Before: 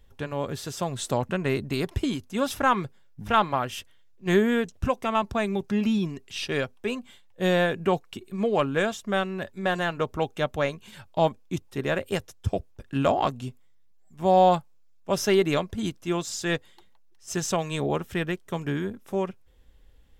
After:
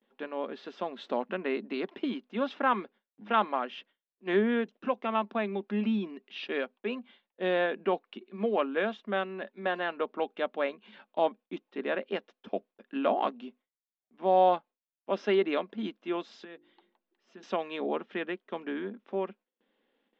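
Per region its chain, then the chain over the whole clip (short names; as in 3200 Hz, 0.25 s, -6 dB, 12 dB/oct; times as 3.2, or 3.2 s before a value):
16.44–17.43 low shelf 310 Hz +7.5 dB + notches 50/100/150/200/250/300/350/400 Hz + compressor 2.5:1, threshold -46 dBFS
whole clip: inverse Chebyshev low-pass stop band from 10000 Hz, stop band 60 dB; gate with hold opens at -48 dBFS; elliptic high-pass 210 Hz, stop band 40 dB; gain -4 dB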